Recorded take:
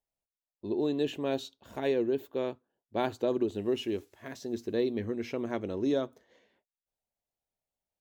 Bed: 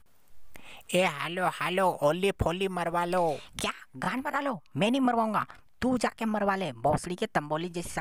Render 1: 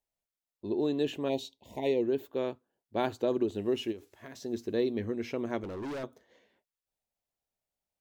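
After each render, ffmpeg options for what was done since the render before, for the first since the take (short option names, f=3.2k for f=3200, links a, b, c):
-filter_complex "[0:a]asplit=3[a][b][c];[a]afade=t=out:st=1.28:d=0.02[d];[b]asuperstop=centerf=1400:order=12:qfactor=1.6,afade=t=in:st=1.28:d=0.02,afade=t=out:st=2.01:d=0.02[e];[c]afade=t=in:st=2.01:d=0.02[f];[d][e][f]amix=inputs=3:normalize=0,asplit=3[g][h][i];[g]afade=t=out:st=3.91:d=0.02[j];[h]acompressor=threshold=-41dB:ratio=4:attack=3.2:release=140:knee=1:detection=peak,afade=t=in:st=3.91:d=0.02,afade=t=out:st=4.42:d=0.02[k];[i]afade=t=in:st=4.42:d=0.02[l];[j][k][l]amix=inputs=3:normalize=0,asettb=1/sr,asplit=3[m][n][o];[m]atrim=end=5.634[p];[n]atrim=start=5.63:end=6.04,asetpts=PTS-STARTPTS,afade=t=in:d=0.004:c=qsin,afade=t=out:st=0.406:d=0.004:c=qsin,asoftclip=type=hard:threshold=-35.5dB[q];[o]atrim=start=6.036[r];[p][q]acrossfade=d=0.004:c1=hsin:c2=qsin[s];[s][r]acrossfade=d=0.004:c1=qsin:c2=hsin"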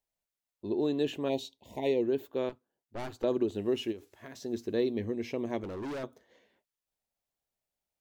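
-filter_complex "[0:a]asettb=1/sr,asplit=3[a][b][c];[a]atrim=end=2.494[d];[b]atrim=start=2.49:end=3.24,asetpts=PTS-STARTPTS,afade=t=in:d=0.004:c=qsin,afade=t=out:st=0.746:d=0.004:c=qsin,aeval=exprs='(tanh(56.2*val(0)+0.65)-tanh(0.65))/56.2':c=same[e];[c]atrim=start=3.236[f];[d][e]acrossfade=d=0.004:c1=hsin:c2=qsin[g];[g][f]acrossfade=d=0.004:c1=qsin:c2=hsin,asettb=1/sr,asplit=3[h][i][j];[h]atrim=end=4.914[k];[i]atrim=start=4.91:end=5.6,asetpts=PTS-STARTPTS,afade=t=in:d=0.004:c=qsin,afade=t=out:st=0.686:d=0.004:c=qsin,equalizer=f=1.4k:w=4.3:g=-12[l];[j]atrim=start=5.596[m];[k][l]acrossfade=d=0.004:c1=hsin:c2=qsin[n];[n][m]acrossfade=d=0.004:c1=qsin:c2=hsin"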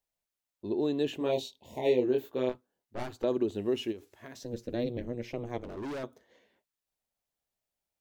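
-filter_complex "[0:a]asettb=1/sr,asplit=3[a][b][c];[a]atrim=end=1.174[d];[b]atrim=start=1.17:end=3.03,asetpts=PTS-STARTPTS,afade=t=in:d=0.004:c=qsin,afade=t=out:st=1.856:d=0.004:c=qsin,asplit=2[e][f];[f]adelay=24,volume=-2.5dB[g];[e][g]amix=inputs=2:normalize=0,atrim=end_sample=82026[h];[c]atrim=start=3.026[i];[d][h]acrossfade=d=0.004:c1=hsin:c2=qsin[j];[j][i]acrossfade=d=0.004:c1=qsin:c2=hsin,asettb=1/sr,asplit=3[k][l][m];[k]atrim=end=4.434[n];[l]atrim=start=4.43:end=5.77,asetpts=PTS-STARTPTS,afade=t=in:d=0.004:c=qsin,afade=t=out:st=1.336:d=0.004:c=qsin,aeval=exprs='val(0)*sin(2*PI*120*n/s)':c=same[o];[m]atrim=start=5.766[p];[n][o]acrossfade=d=0.004:c1=hsin:c2=qsin[q];[q][p]acrossfade=d=0.004:c1=qsin:c2=hsin"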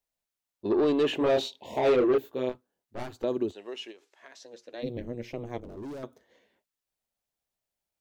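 -filter_complex "[0:a]asettb=1/sr,asplit=3[a][b][c];[a]atrim=end=0.654[d];[b]atrim=start=0.65:end=2.18,asetpts=PTS-STARTPTS,afade=t=in:d=0.004:c=qsin,afade=t=out:st=1.526:d=0.004:c=qsin,asplit=2[e][f];[f]highpass=f=720:p=1,volume=22dB,asoftclip=type=tanh:threshold=-14.5dB[g];[e][g]amix=inputs=2:normalize=0,lowpass=f=1.7k:p=1,volume=-6dB[h];[c]atrim=start=2.176[i];[d][h]acrossfade=d=0.004:c1=hsin:c2=qsin[j];[j][i]acrossfade=d=0.004:c1=qsin:c2=hsin,asplit=3[k][l][m];[k]afade=t=out:st=3.51:d=0.02[n];[l]highpass=680,lowpass=7.2k,afade=t=in:st=3.51:d=0.02,afade=t=out:st=4.82:d=0.02[o];[m]afade=t=in:st=4.82:d=0.02[p];[n][o][p]amix=inputs=3:normalize=0,asettb=1/sr,asplit=3[q][r][s];[q]atrim=end=5.604[t];[r]atrim=start=5.6:end=6.03,asetpts=PTS-STARTPTS,afade=t=in:d=0.004:c=qsin,afade=t=out:st=0.426:d=0.004:c=qsin,equalizer=f=2.1k:t=o:w=2.7:g=-10[u];[s]atrim=start=6.026[v];[t][u]acrossfade=d=0.004:c1=hsin:c2=qsin[w];[w][v]acrossfade=d=0.004:c1=qsin:c2=hsin"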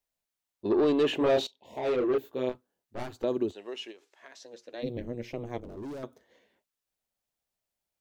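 -filter_complex "[0:a]asplit=2[a][b];[a]atrim=end=1.47,asetpts=PTS-STARTPTS,afade=t=out:st=1.466:d=0.004:c=hsin:silence=0.141254[c];[b]atrim=start=1.47,asetpts=PTS-STARTPTS,afade=t=in:d=1.02:silence=0.141254[d];[c][d]concat=n=2:v=0:a=1"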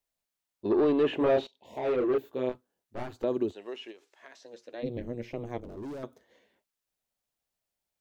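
-filter_complex "[0:a]acrossover=split=2800[a][b];[b]acompressor=threshold=-55dB:ratio=4:attack=1:release=60[c];[a][c]amix=inputs=2:normalize=0"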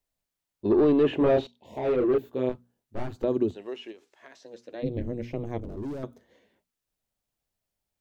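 -af "lowshelf=f=270:g=10.5,bandreject=f=60:t=h:w=6,bandreject=f=120:t=h:w=6,bandreject=f=180:t=h:w=6,bandreject=f=240:t=h:w=6"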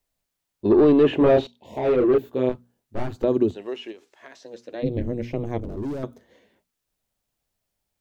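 -af "volume=5dB"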